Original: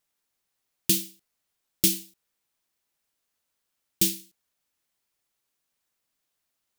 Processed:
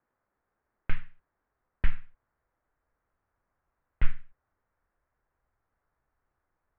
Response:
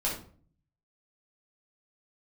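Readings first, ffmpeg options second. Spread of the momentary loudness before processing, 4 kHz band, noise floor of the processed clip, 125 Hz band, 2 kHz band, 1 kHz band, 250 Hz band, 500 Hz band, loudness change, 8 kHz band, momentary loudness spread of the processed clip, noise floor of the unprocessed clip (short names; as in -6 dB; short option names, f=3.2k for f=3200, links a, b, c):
13 LU, -24.5 dB, -83 dBFS, +0.5 dB, 0.0 dB, n/a, -18.0 dB, -15.0 dB, -14.0 dB, under -40 dB, 12 LU, -81 dBFS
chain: -af "highpass=f=340:t=q:w=0.5412,highpass=f=340:t=q:w=1.307,lowpass=f=2k:t=q:w=0.5176,lowpass=f=2k:t=q:w=0.7071,lowpass=f=2k:t=q:w=1.932,afreqshift=-340,asubboost=boost=6:cutoff=84,volume=8.5dB"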